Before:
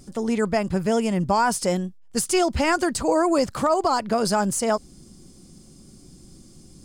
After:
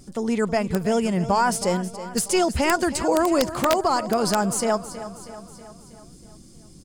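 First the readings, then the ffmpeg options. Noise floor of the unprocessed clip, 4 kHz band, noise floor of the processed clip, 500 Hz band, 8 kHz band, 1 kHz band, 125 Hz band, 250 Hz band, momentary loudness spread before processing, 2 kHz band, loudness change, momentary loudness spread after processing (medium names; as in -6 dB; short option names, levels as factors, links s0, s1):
-49 dBFS, +1.0 dB, -47 dBFS, 0.0 dB, +0.5 dB, 0.0 dB, 0.0 dB, 0.0 dB, 5 LU, +0.5 dB, 0.0 dB, 12 LU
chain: -af "aeval=exprs='0.299*(cos(1*acos(clip(val(0)/0.299,-1,1)))-cos(1*PI/2))+0.00376*(cos(4*acos(clip(val(0)/0.299,-1,1)))-cos(4*PI/2))':c=same,aecho=1:1:320|640|960|1280|1600|1920:0.211|0.118|0.0663|0.0371|0.0208|0.0116,aeval=exprs='(mod(3.35*val(0)+1,2)-1)/3.35':c=same"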